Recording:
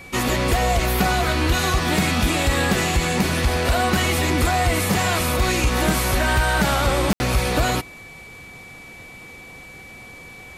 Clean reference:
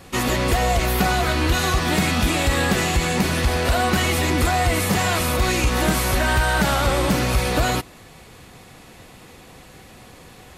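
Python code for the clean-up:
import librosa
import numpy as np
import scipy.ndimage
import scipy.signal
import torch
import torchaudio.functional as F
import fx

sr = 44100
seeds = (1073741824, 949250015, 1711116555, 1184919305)

y = fx.notch(x, sr, hz=2300.0, q=30.0)
y = fx.fix_ambience(y, sr, seeds[0], print_start_s=8.64, print_end_s=9.14, start_s=7.13, end_s=7.2)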